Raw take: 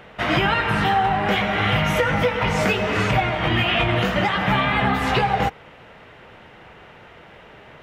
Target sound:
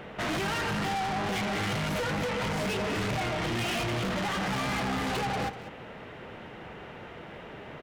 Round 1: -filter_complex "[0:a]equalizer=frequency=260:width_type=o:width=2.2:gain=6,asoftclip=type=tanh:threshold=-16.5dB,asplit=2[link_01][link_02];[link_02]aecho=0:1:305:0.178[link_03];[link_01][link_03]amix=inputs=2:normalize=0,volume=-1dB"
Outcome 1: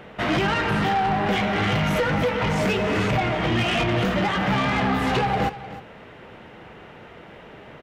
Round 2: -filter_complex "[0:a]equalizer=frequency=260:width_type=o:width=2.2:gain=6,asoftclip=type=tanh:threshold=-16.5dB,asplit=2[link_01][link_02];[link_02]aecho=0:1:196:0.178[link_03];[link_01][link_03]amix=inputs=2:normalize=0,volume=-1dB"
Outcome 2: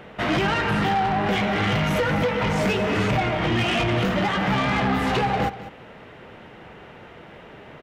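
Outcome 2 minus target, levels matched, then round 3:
soft clipping: distortion −7 dB
-filter_complex "[0:a]equalizer=frequency=260:width_type=o:width=2.2:gain=6,asoftclip=type=tanh:threshold=-28dB,asplit=2[link_01][link_02];[link_02]aecho=0:1:196:0.178[link_03];[link_01][link_03]amix=inputs=2:normalize=0,volume=-1dB"

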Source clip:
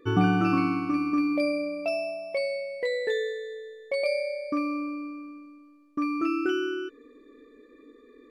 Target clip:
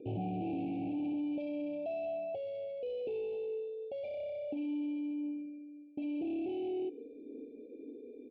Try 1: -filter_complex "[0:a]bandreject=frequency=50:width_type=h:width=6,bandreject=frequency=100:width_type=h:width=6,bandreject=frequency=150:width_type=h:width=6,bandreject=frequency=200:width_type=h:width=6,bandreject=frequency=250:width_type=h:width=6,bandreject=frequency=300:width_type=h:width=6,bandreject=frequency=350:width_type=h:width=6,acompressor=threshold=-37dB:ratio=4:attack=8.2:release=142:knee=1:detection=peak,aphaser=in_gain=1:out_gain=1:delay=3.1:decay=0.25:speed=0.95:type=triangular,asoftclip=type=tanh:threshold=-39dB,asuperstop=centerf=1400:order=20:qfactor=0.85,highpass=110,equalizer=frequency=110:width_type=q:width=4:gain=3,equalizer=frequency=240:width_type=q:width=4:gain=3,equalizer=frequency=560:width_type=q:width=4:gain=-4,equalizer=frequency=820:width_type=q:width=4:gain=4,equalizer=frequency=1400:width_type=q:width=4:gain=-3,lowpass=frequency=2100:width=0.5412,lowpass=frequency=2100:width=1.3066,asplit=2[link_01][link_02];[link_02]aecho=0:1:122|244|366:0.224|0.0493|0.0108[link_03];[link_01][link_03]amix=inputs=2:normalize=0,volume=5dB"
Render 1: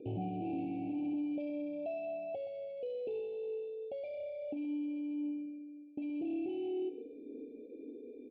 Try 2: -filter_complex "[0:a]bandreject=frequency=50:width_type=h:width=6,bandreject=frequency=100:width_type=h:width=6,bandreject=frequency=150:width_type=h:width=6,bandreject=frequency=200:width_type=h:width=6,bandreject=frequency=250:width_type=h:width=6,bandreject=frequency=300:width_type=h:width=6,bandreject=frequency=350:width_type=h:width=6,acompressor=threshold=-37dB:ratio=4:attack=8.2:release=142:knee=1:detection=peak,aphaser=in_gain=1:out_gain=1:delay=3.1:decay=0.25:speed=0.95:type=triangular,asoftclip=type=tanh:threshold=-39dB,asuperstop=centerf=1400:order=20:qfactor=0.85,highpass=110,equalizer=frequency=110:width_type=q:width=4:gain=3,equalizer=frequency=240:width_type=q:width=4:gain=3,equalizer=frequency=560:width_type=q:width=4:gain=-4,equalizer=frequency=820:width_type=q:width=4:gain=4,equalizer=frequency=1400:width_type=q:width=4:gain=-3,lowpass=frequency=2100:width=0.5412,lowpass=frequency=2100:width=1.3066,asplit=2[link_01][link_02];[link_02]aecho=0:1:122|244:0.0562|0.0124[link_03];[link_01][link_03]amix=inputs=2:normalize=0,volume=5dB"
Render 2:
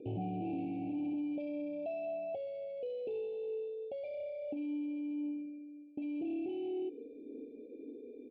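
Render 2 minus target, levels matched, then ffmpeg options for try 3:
downward compressor: peak gain reduction +5.5 dB
-filter_complex "[0:a]bandreject=frequency=50:width_type=h:width=6,bandreject=frequency=100:width_type=h:width=6,bandreject=frequency=150:width_type=h:width=6,bandreject=frequency=200:width_type=h:width=6,bandreject=frequency=250:width_type=h:width=6,bandreject=frequency=300:width_type=h:width=6,bandreject=frequency=350:width_type=h:width=6,acompressor=threshold=-29.5dB:ratio=4:attack=8.2:release=142:knee=1:detection=peak,aphaser=in_gain=1:out_gain=1:delay=3.1:decay=0.25:speed=0.95:type=triangular,asoftclip=type=tanh:threshold=-39dB,asuperstop=centerf=1400:order=20:qfactor=0.85,highpass=110,equalizer=frequency=110:width_type=q:width=4:gain=3,equalizer=frequency=240:width_type=q:width=4:gain=3,equalizer=frequency=560:width_type=q:width=4:gain=-4,equalizer=frequency=820:width_type=q:width=4:gain=4,equalizer=frequency=1400:width_type=q:width=4:gain=-3,lowpass=frequency=2100:width=0.5412,lowpass=frequency=2100:width=1.3066,asplit=2[link_01][link_02];[link_02]aecho=0:1:122|244:0.0562|0.0124[link_03];[link_01][link_03]amix=inputs=2:normalize=0,volume=5dB"

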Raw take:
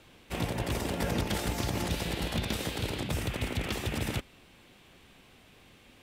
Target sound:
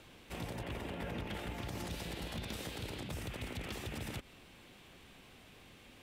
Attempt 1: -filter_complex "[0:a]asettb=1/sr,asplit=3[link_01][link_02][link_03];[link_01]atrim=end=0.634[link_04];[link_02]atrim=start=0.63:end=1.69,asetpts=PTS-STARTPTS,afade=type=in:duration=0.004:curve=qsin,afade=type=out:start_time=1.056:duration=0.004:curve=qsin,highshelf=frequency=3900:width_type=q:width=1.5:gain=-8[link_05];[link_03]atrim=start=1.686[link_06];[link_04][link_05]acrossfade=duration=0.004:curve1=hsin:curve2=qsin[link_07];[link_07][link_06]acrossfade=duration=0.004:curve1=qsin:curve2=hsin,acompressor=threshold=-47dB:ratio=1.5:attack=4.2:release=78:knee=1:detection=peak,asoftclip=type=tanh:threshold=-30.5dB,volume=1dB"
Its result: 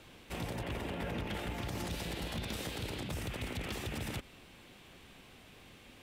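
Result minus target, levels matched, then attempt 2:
downward compressor: peak gain reduction −3.5 dB
-filter_complex "[0:a]asettb=1/sr,asplit=3[link_01][link_02][link_03];[link_01]atrim=end=0.634[link_04];[link_02]atrim=start=0.63:end=1.69,asetpts=PTS-STARTPTS,afade=type=in:duration=0.004:curve=qsin,afade=type=out:start_time=1.056:duration=0.004:curve=qsin,highshelf=frequency=3900:width_type=q:width=1.5:gain=-8[link_05];[link_03]atrim=start=1.686[link_06];[link_04][link_05]acrossfade=duration=0.004:curve1=hsin:curve2=qsin[link_07];[link_07][link_06]acrossfade=duration=0.004:curve1=qsin:curve2=hsin,acompressor=threshold=-58dB:ratio=1.5:attack=4.2:release=78:knee=1:detection=peak,asoftclip=type=tanh:threshold=-30.5dB,volume=1dB"

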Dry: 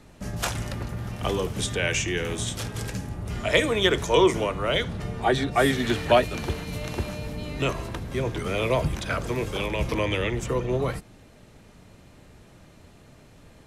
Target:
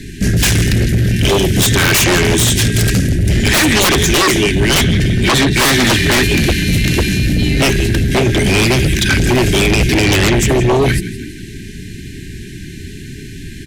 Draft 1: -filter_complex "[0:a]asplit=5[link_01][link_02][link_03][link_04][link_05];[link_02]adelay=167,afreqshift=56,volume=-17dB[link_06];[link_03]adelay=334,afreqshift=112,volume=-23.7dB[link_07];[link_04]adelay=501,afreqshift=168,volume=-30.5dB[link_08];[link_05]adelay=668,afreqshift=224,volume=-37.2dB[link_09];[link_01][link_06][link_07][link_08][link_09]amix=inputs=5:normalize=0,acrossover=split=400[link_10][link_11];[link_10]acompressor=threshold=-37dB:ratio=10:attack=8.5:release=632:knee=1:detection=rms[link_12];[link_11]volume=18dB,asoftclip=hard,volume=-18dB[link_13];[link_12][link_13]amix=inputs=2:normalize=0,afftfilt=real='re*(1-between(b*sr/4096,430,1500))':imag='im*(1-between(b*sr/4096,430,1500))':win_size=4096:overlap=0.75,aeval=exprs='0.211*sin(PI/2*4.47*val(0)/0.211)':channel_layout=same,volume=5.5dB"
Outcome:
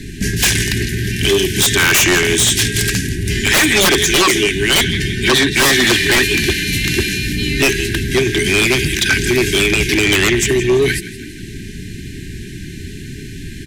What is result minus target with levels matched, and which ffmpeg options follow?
downward compressor: peak gain reduction +11 dB
-filter_complex "[0:a]asplit=5[link_01][link_02][link_03][link_04][link_05];[link_02]adelay=167,afreqshift=56,volume=-17dB[link_06];[link_03]adelay=334,afreqshift=112,volume=-23.7dB[link_07];[link_04]adelay=501,afreqshift=168,volume=-30.5dB[link_08];[link_05]adelay=668,afreqshift=224,volume=-37.2dB[link_09];[link_01][link_06][link_07][link_08][link_09]amix=inputs=5:normalize=0,acrossover=split=400[link_10][link_11];[link_10]acompressor=threshold=-25dB:ratio=10:attack=8.5:release=632:knee=1:detection=rms[link_12];[link_11]volume=18dB,asoftclip=hard,volume=-18dB[link_13];[link_12][link_13]amix=inputs=2:normalize=0,afftfilt=real='re*(1-between(b*sr/4096,430,1500))':imag='im*(1-between(b*sr/4096,430,1500))':win_size=4096:overlap=0.75,aeval=exprs='0.211*sin(PI/2*4.47*val(0)/0.211)':channel_layout=same,volume=5.5dB"

